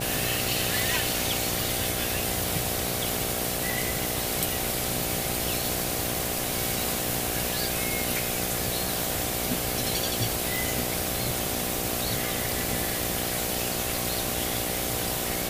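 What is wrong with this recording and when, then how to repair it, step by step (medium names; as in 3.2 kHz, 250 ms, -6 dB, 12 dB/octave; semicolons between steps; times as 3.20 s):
buzz 60 Hz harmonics 13 -34 dBFS
10.56 s: pop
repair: de-click; de-hum 60 Hz, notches 13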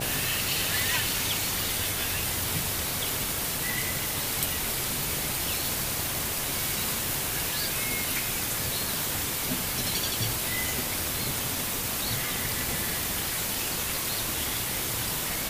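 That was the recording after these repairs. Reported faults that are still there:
nothing left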